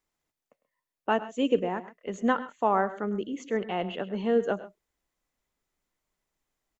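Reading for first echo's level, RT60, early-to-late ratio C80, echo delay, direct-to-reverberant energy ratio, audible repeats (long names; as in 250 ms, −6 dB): −17.0 dB, no reverb audible, no reverb audible, 103 ms, no reverb audible, 1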